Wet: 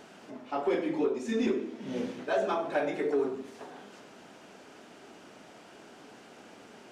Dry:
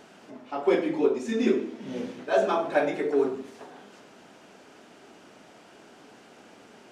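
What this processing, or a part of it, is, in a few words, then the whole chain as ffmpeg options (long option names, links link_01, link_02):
soft clipper into limiter: -af "asoftclip=type=tanh:threshold=-13dB,alimiter=limit=-20dB:level=0:latency=1:release=479"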